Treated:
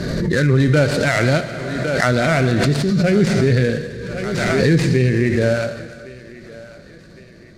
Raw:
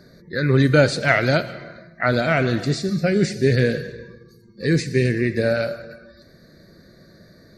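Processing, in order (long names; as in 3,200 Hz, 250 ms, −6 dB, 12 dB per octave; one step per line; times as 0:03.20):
gap after every zero crossing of 0.088 ms
low-pass filter 8,100 Hz 12 dB per octave
low-shelf EQ 140 Hz +6.5 dB
feedback echo with a high-pass in the loop 1,108 ms, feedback 50%, high-pass 320 Hz, level −18.5 dB
on a send at −13.5 dB: convolution reverb RT60 1.5 s, pre-delay 48 ms
on the sum: boost into a limiter +6 dB
background raised ahead of every attack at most 23 dB per second
level −5 dB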